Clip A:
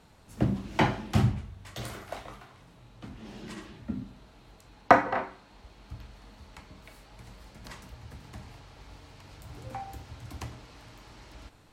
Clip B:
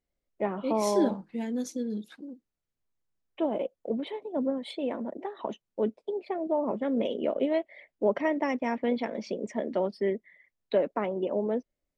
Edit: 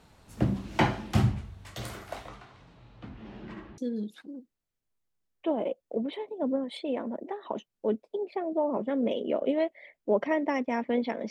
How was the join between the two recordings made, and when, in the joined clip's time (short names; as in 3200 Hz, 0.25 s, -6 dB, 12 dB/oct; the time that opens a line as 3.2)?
clip A
2.28–3.78 LPF 7500 Hz -> 1600 Hz
3.78 switch to clip B from 1.72 s